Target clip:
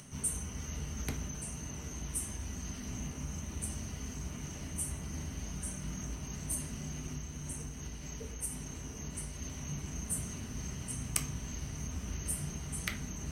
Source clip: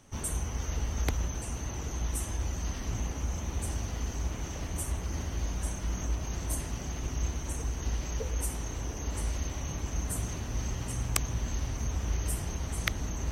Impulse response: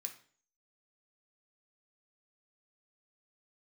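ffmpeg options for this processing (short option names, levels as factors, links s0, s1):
-filter_complex "[0:a]acompressor=mode=upward:threshold=0.0112:ratio=2.5,bass=f=250:g=10,treble=f=4000:g=1,asettb=1/sr,asplit=3[s0][s1][s2];[s0]atrim=end=7.104[s3];[s1]atrim=start=7.1:end=9.42,asetpts=PTS-STARTPTS,afade=t=in:d=0.004:c=qsin,afade=t=out:st=2.316:d=0.004:c=qsin,acompressor=threshold=0.0794:ratio=3[s4];[s2]atrim=start=9.416[s5];[s3][s4]acrossfade=d=0.004:c1=hsin:c2=qsin[s6];[s6][s5]acrossfade=d=0.004:c1=qsin:c2=hsin[s7];[1:a]atrim=start_sample=2205,asetrate=52920,aresample=44100[s8];[s7][s8]afir=irnorm=-1:irlink=0"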